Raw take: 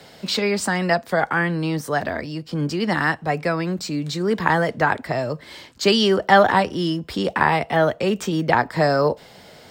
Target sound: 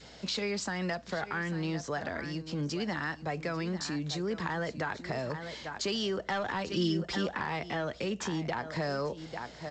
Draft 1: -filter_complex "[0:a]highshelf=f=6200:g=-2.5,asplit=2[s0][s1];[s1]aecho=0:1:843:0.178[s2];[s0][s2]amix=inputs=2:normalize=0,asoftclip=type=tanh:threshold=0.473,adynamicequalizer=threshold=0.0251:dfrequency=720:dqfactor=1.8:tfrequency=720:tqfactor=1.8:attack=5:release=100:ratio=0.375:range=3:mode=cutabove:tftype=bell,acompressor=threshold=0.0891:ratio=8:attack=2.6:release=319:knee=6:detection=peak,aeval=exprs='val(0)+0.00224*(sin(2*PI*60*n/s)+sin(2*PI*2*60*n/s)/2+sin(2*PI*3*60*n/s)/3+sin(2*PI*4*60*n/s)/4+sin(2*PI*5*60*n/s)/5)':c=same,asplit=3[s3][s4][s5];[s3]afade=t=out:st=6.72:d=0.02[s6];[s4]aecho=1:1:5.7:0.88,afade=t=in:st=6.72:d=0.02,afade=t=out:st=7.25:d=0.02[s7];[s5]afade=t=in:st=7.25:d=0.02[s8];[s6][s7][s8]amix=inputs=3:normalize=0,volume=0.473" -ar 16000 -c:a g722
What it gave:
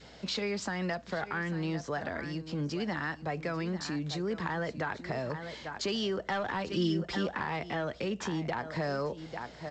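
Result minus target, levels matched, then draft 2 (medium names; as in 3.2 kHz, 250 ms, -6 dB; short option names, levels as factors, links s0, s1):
8 kHz band -3.5 dB
-filter_complex "[0:a]highshelf=f=6200:g=7.5,asplit=2[s0][s1];[s1]aecho=0:1:843:0.178[s2];[s0][s2]amix=inputs=2:normalize=0,asoftclip=type=tanh:threshold=0.473,adynamicequalizer=threshold=0.0251:dfrequency=720:dqfactor=1.8:tfrequency=720:tqfactor=1.8:attack=5:release=100:ratio=0.375:range=3:mode=cutabove:tftype=bell,acompressor=threshold=0.0891:ratio=8:attack=2.6:release=319:knee=6:detection=peak,aeval=exprs='val(0)+0.00224*(sin(2*PI*60*n/s)+sin(2*PI*2*60*n/s)/2+sin(2*PI*3*60*n/s)/3+sin(2*PI*4*60*n/s)/4+sin(2*PI*5*60*n/s)/5)':c=same,asplit=3[s3][s4][s5];[s3]afade=t=out:st=6.72:d=0.02[s6];[s4]aecho=1:1:5.7:0.88,afade=t=in:st=6.72:d=0.02,afade=t=out:st=7.25:d=0.02[s7];[s5]afade=t=in:st=7.25:d=0.02[s8];[s6][s7][s8]amix=inputs=3:normalize=0,volume=0.473" -ar 16000 -c:a g722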